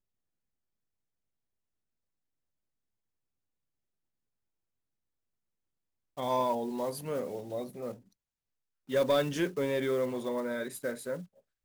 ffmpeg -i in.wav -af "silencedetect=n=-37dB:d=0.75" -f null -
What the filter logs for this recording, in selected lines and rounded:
silence_start: 0.00
silence_end: 6.17 | silence_duration: 6.17
silence_start: 7.92
silence_end: 8.90 | silence_duration: 0.98